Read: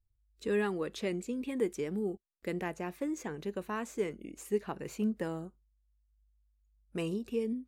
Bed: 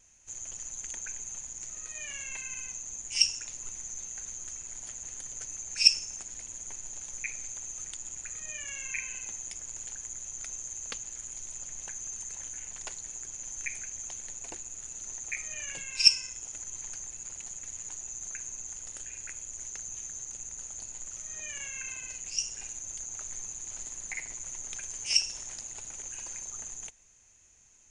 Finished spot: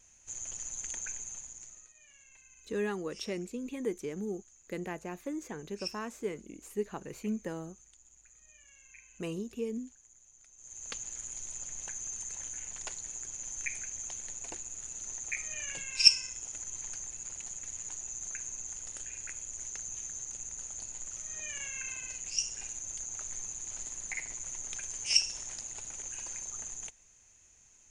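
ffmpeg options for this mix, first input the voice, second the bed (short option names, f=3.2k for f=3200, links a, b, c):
-filter_complex "[0:a]adelay=2250,volume=-2.5dB[a];[1:a]volume=19.5dB,afade=t=out:st=1.04:d=0.89:silence=0.1,afade=t=in:st=10.56:d=0.47:silence=0.105925[b];[a][b]amix=inputs=2:normalize=0"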